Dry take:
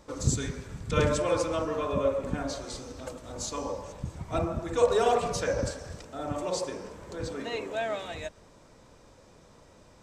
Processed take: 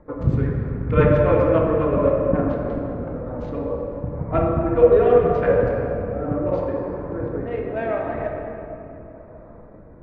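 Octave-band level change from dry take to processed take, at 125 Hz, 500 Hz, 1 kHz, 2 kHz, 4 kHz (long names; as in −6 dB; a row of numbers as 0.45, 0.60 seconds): +11.5 dB, +10.5 dB, +5.5 dB, +5.0 dB, below −10 dB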